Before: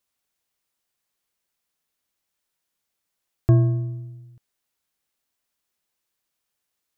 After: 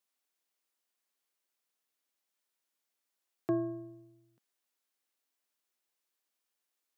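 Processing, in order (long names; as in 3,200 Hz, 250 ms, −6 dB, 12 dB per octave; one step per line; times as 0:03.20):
high-pass filter 230 Hz 24 dB per octave
level −5.5 dB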